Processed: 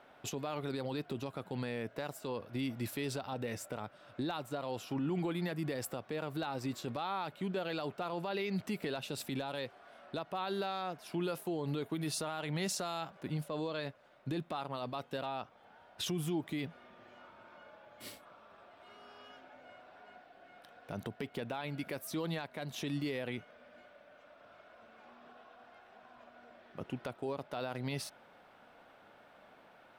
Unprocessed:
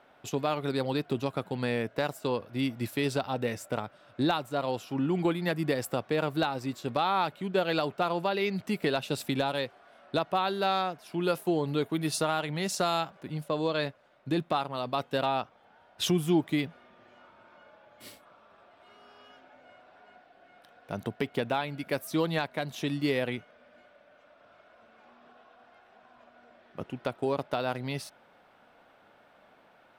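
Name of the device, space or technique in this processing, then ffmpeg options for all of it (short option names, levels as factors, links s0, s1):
stacked limiters: -af "alimiter=limit=0.0794:level=0:latency=1:release=278,alimiter=level_in=1.58:limit=0.0631:level=0:latency=1:release=36,volume=0.631"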